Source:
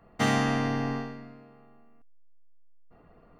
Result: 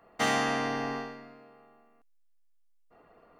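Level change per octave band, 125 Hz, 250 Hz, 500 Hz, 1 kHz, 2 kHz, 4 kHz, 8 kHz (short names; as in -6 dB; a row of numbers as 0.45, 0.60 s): -11.5, -6.5, -0.5, +0.5, +0.5, +1.0, +1.5 dB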